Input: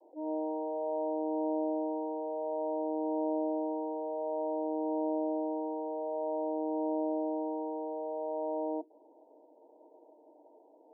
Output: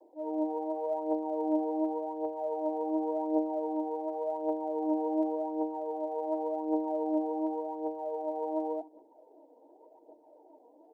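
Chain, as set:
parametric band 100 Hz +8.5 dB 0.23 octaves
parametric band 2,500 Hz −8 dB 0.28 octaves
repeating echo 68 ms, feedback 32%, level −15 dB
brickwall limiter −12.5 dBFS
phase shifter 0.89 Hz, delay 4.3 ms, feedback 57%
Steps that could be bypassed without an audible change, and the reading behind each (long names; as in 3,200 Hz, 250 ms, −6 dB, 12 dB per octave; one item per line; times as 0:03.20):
parametric band 100 Hz: nothing at its input below 300 Hz
parametric band 2,500 Hz: nothing at its input above 960 Hz
brickwall limiter −12.5 dBFS: peak of its input −24.0 dBFS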